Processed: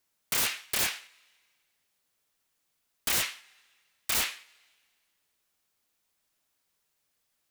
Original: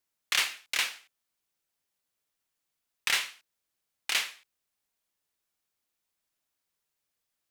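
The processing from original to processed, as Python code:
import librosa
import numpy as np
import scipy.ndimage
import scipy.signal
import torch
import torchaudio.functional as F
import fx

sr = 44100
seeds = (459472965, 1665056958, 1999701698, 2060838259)

y = fx.rev_double_slope(x, sr, seeds[0], early_s=0.33, late_s=1.8, knee_db=-18, drr_db=17.5)
y = (np.mod(10.0 ** (27.0 / 20.0) * y + 1.0, 2.0) - 1.0) / 10.0 ** (27.0 / 20.0)
y = y * 10.0 ** (6.0 / 20.0)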